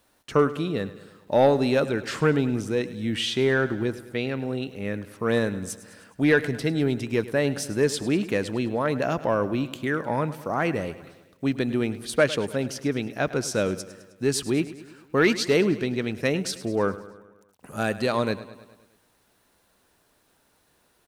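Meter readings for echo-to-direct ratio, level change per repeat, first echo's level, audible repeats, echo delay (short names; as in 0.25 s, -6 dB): -14.0 dB, -4.5 dB, -16.0 dB, 5, 0.104 s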